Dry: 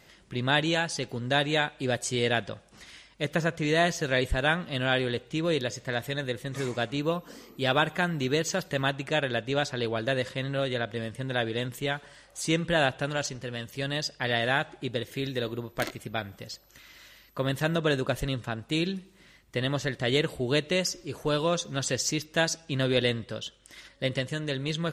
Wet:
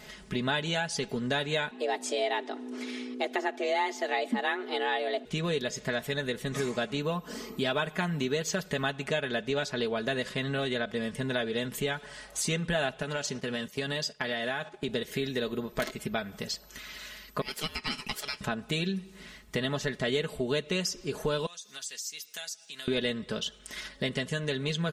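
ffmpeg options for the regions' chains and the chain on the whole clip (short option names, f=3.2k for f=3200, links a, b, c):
-filter_complex "[0:a]asettb=1/sr,asplit=3[a][b][c];[a]atrim=end=1.714[d];[b]atrim=start=1.71:end=5.25,asetpts=PTS-STARTPTS,afade=t=in:d=0.004:c=qsin,afade=t=out:st=3.536:d=0.004:c=qsin,highshelf=f=5.2k:g=-9.5,aeval=exprs='val(0)+0.00501*(sin(2*PI*60*n/s)+sin(2*PI*2*60*n/s)/2+sin(2*PI*3*60*n/s)/3+sin(2*PI*4*60*n/s)/4+sin(2*PI*5*60*n/s)/5)':c=same,afreqshift=190[e];[c]atrim=start=5.246[f];[d][e]acrossfade=d=0.004:c1=hsin:c2=qsin[g];[g][f]acrossfade=d=0.004:c1=qsin:c2=hsin,asettb=1/sr,asplit=3[h][i][j];[h]atrim=end=13.024[k];[i]atrim=start=13.02:end=14.89,asetpts=PTS-STARTPTS,afade=t=in:d=0.004:c=qsin,afade=t=out:st=1.866:d=0.004:c=qsin,highpass=110,agate=range=-10dB:threshold=-45dB:ratio=16:release=100:detection=peak,acompressor=threshold=-31dB:ratio=2.5:attack=3.2:release=140:knee=1:detection=peak[l];[j]atrim=start=14.886[m];[k][l]acrossfade=d=0.004:c1=hsin:c2=qsin[n];[n][m]acrossfade=d=0.004:c1=qsin:c2=hsin,asettb=1/sr,asplit=3[o][p][q];[o]atrim=end=17.414[r];[p]atrim=start=17.41:end=18.41,asetpts=PTS-STARTPTS,afade=t=in:d=0.004:c=qsin,afade=t=out:st=0.996:d=0.004:c=qsin,highpass=1.4k,aeval=exprs='val(0)*sin(2*PI*1400*n/s)':c=same[s];[q]atrim=start=18.406[t];[r][s]acrossfade=d=0.004:c1=hsin:c2=qsin[u];[u][t]acrossfade=d=0.004:c1=qsin:c2=hsin,asettb=1/sr,asplit=3[v][w][x];[v]atrim=end=21.464[y];[w]atrim=start=21.46:end=22.88,asetpts=PTS-STARTPTS,afade=t=in:d=0.004:c=qsin,afade=t=out:st=1.416:d=0.004:c=qsin,highpass=56,aderivative,acompressor=threshold=-47dB:ratio=3:attack=3.2:release=140:knee=1:detection=peak[z];[x]atrim=start=22.876[aa];[y][z]acrossfade=d=0.004:c1=hsin:c2=qsin[ab];[ab][aa]acrossfade=d=0.004:c1=qsin:c2=hsin,aecho=1:1:4.7:0.68,acompressor=threshold=-37dB:ratio=3,volume=6.5dB"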